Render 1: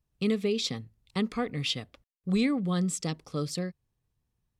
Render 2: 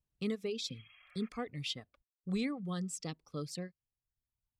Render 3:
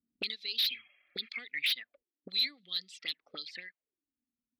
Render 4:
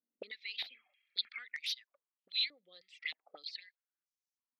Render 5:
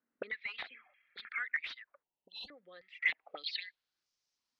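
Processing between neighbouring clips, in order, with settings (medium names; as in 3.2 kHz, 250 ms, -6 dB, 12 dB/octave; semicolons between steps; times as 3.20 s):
spectral replace 0.67–1.26 s, 550–3300 Hz both; reverb removal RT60 1.1 s; trim -8 dB
auto-wah 240–4100 Hz, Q 6.7, up, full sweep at -35.5 dBFS; sine folder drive 14 dB, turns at -30 dBFS; graphic EQ 125/250/1000/2000/4000/8000 Hz -10/+9/-10/+11/+9/-9 dB; trim -2.5 dB
step-sequenced band-pass 3.2 Hz 540–5800 Hz; trim +5 dB
saturation -36 dBFS, distortion -8 dB; spectral selection erased 2.03–2.49 s, 1–2.6 kHz; low-pass sweep 1.6 kHz -> 5.2 kHz, 2.81–4.07 s; trim +7.5 dB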